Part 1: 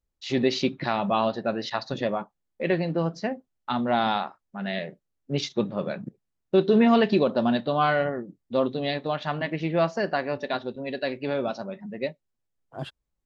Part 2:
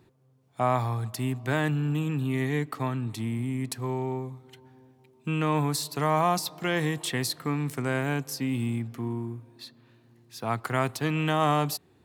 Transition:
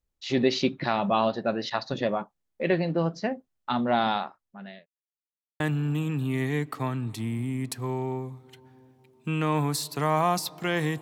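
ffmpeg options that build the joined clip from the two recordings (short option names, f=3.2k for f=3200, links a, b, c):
-filter_complex "[0:a]apad=whole_dur=11.01,atrim=end=11.01,asplit=2[a][b];[a]atrim=end=4.86,asetpts=PTS-STARTPTS,afade=t=out:st=3.73:d=1.13:c=qsin[c];[b]atrim=start=4.86:end=5.6,asetpts=PTS-STARTPTS,volume=0[d];[1:a]atrim=start=1.6:end=7.01,asetpts=PTS-STARTPTS,afade=t=in:d=0.004:c=hsin[e];[c][d][e]concat=n=3:v=0:a=1"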